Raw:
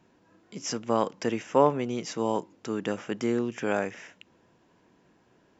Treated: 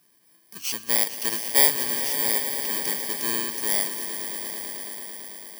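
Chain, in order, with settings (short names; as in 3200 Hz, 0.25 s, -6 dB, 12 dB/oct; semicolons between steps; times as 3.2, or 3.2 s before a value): FFT order left unsorted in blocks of 32 samples; tilt shelf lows -8.5 dB; on a send: swelling echo 0.111 s, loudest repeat 5, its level -13 dB; on the sum: gain -2.5 dB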